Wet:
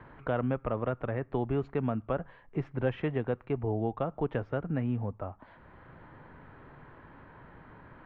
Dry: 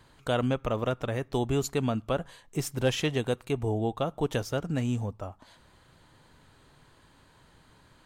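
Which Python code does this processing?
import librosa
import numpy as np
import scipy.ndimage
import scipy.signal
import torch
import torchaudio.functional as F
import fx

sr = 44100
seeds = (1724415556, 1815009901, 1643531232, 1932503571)

y = scipy.signal.sosfilt(scipy.signal.butter(4, 2100.0, 'lowpass', fs=sr, output='sos'), x)
y = fx.band_squash(y, sr, depth_pct=40)
y = y * 10.0 ** (-2.5 / 20.0)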